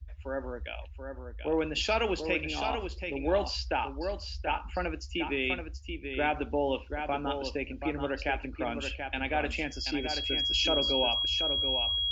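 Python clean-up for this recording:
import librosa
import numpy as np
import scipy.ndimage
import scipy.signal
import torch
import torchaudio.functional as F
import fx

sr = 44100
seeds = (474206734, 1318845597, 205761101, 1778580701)

y = fx.notch(x, sr, hz=3300.0, q=30.0)
y = fx.noise_reduce(y, sr, print_start_s=0.84, print_end_s=1.34, reduce_db=30.0)
y = fx.fix_echo_inverse(y, sr, delay_ms=732, level_db=-7.0)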